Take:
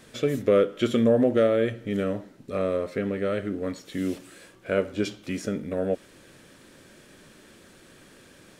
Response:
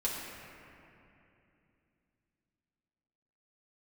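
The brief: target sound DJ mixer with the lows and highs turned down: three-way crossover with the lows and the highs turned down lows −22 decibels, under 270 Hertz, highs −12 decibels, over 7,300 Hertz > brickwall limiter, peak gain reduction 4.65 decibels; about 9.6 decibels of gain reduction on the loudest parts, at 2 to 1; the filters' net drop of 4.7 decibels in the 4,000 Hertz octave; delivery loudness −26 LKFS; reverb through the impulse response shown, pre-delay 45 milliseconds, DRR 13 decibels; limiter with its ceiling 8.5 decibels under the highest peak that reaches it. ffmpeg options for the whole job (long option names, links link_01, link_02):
-filter_complex "[0:a]equalizer=frequency=4000:width_type=o:gain=-6,acompressor=threshold=-34dB:ratio=2,alimiter=level_in=2dB:limit=-24dB:level=0:latency=1,volume=-2dB,asplit=2[link_01][link_02];[1:a]atrim=start_sample=2205,adelay=45[link_03];[link_02][link_03]afir=irnorm=-1:irlink=0,volume=-18.5dB[link_04];[link_01][link_04]amix=inputs=2:normalize=0,acrossover=split=270 7300:gain=0.0794 1 0.251[link_05][link_06][link_07];[link_05][link_06][link_07]amix=inputs=3:normalize=0,volume=15dB,alimiter=limit=-14.5dB:level=0:latency=1"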